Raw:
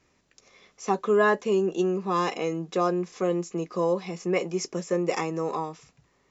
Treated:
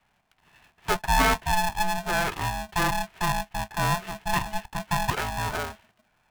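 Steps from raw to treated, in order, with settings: mistuned SSB +56 Hz 160–2800 Hz; polarity switched at an audio rate 430 Hz

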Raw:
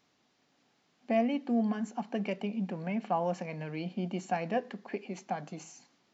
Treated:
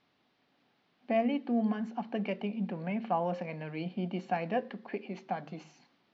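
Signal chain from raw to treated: low-pass 4.3 kHz 24 dB/octave; de-hum 75.86 Hz, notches 7

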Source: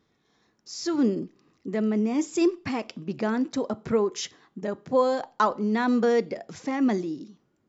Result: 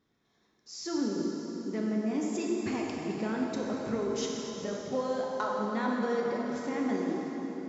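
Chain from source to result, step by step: compression, threshold -23 dBFS, peak gain reduction 7 dB; plate-style reverb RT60 4.4 s, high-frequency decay 0.8×, DRR -2.5 dB; trim -7 dB

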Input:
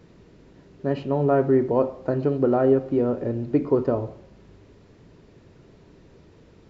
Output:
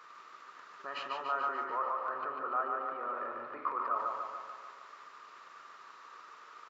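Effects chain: 1.64–3.95 s: low-pass 2.4 kHz 12 dB/octave; transient shaper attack +7 dB, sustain +1 dB; peak limiter -23 dBFS, peak gain reduction 20.5 dB; resonant high-pass 1.2 kHz, resonance Q 11; feedback delay 145 ms, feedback 60%, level -4 dB

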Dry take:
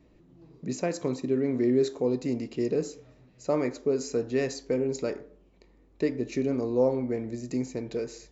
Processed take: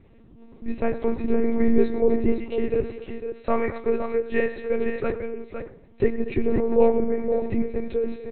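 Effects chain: low-pass that closes with the level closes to 2.3 kHz, closed at -26.5 dBFS; 2.32–5.08 s: tilt shelf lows -5.5 dB, about 810 Hz; multi-tap echo 103/233/509 ms -15.5/-16/-7.5 dB; monotone LPC vocoder at 8 kHz 230 Hz; trim +6.5 dB

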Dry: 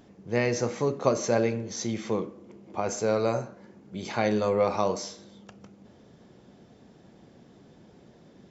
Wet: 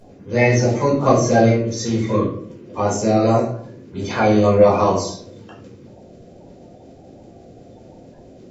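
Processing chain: coarse spectral quantiser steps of 30 dB; simulated room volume 470 m³, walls furnished, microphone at 5.1 m; trim +1.5 dB

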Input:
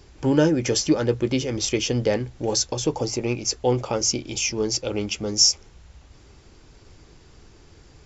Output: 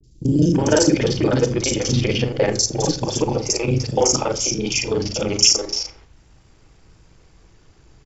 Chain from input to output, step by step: time reversed locally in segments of 35 ms; vibrato 0.34 Hz 16 cents; gate -42 dBFS, range -7 dB; three bands offset in time lows, highs, mids 30/330 ms, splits 350/4200 Hz; reverberation RT60 0.45 s, pre-delay 6 ms, DRR 9.5 dB; trim +5.5 dB

